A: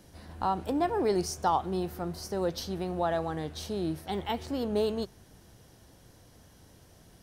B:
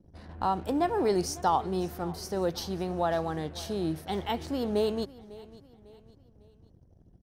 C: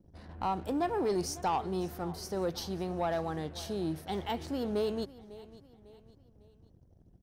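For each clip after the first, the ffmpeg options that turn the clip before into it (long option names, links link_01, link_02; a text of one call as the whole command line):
ffmpeg -i in.wav -af "anlmdn=0.00158,aecho=1:1:550|1100|1650:0.106|0.0434|0.0178,volume=1dB" out.wav
ffmpeg -i in.wav -af "asoftclip=type=tanh:threshold=-20.5dB,volume=-2.5dB" out.wav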